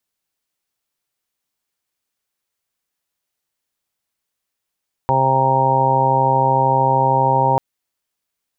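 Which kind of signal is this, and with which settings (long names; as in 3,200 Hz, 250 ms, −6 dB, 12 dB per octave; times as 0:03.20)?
steady harmonic partials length 2.49 s, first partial 133 Hz, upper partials −8.5/−5/−1/−5.5/1.5/5 dB, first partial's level −20.5 dB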